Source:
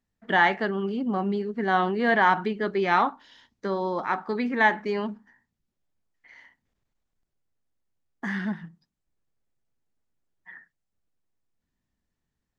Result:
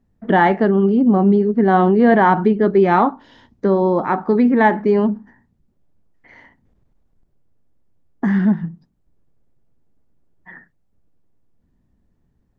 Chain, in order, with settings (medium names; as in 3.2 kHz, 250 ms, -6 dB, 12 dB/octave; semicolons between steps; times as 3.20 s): tilt shelf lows +10 dB, about 1.1 kHz; in parallel at -0.5 dB: compression, threshold -30 dBFS, peak gain reduction 16 dB; on the sum: trim +3.5 dB